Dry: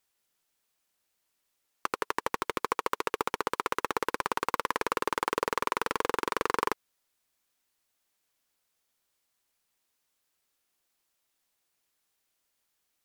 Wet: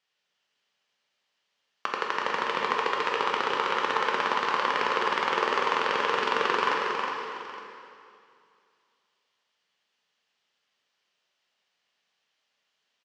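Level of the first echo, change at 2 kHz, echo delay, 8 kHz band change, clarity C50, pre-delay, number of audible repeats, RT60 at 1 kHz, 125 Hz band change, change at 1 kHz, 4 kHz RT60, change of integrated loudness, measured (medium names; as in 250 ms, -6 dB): -6.0 dB, +7.0 dB, 364 ms, -4.0 dB, -1.0 dB, 5 ms, 2, 2.6 s, -0.5 dB, +5.0 dB, 2.4 s, +5.0 dB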